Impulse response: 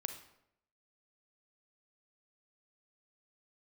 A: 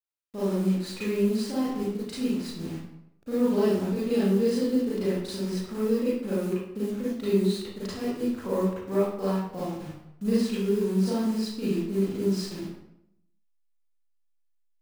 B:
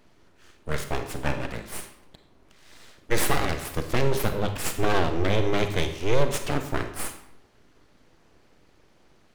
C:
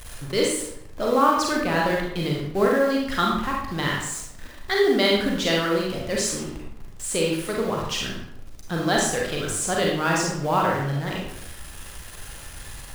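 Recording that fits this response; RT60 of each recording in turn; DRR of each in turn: B; 0.75, 0.75, 0.75 seconds; −10.5, 7.0, −2.5 decibels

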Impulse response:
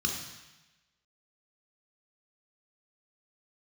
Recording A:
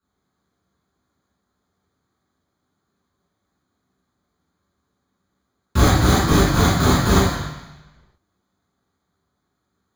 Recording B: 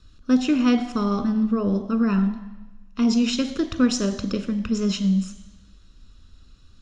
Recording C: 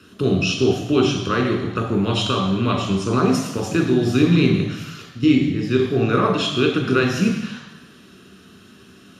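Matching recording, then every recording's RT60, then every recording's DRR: C; 1.0, 1.0, 1.0 seconds; −7.5, 11.0, 2.0 decibels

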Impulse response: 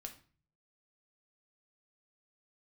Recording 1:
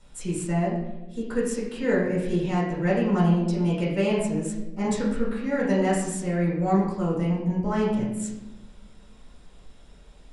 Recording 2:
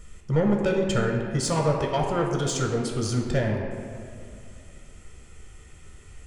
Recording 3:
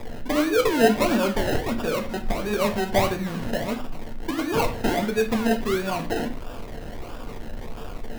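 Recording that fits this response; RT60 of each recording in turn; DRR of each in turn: 3; 1.1, 2.4, 0.40 seconds; −7.0, 0.5, 4.0 decibels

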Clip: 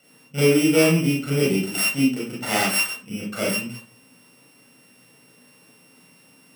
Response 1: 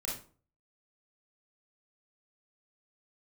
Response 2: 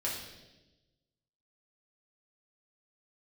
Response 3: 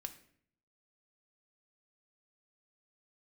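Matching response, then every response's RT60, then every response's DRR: 1; 0.40, 1.1, 0.60 seconds; −4.5, −6.0, 5.5 decibels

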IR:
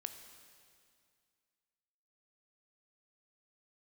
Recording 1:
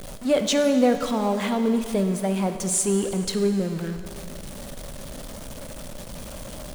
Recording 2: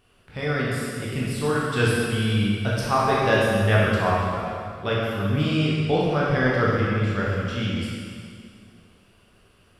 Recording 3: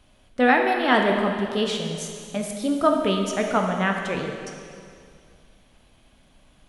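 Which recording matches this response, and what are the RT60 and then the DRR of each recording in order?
1; 2.2, 2.2, 2.2 seconds; 7.5, −6.5, 2.0 decibels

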